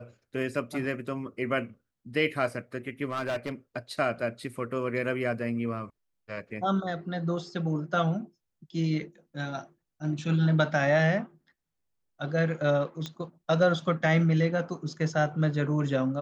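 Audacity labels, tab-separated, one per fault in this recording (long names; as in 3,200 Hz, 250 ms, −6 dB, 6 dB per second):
3.050000	3.520000	clipping −26.5 dBFS
13.060000	13.060000	click −21 dBFS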